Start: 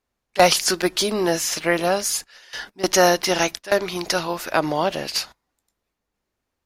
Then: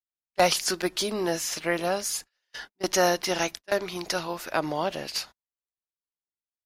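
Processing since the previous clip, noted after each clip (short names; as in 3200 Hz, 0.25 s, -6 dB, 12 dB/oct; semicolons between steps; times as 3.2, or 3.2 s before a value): gate -34 dBFS, range -25 dB; gain -6.5 dB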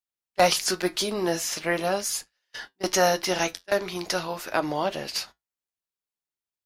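flange 0.4 Hz, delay 8.5 ms, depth 3.1 ms, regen -65%; gain +5.5 dB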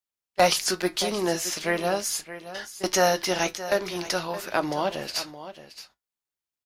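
echo 0.622 s -13.5 dB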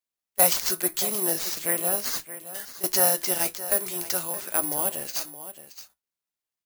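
careless resampling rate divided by 4×, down none, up zero stuff; gain -6 dB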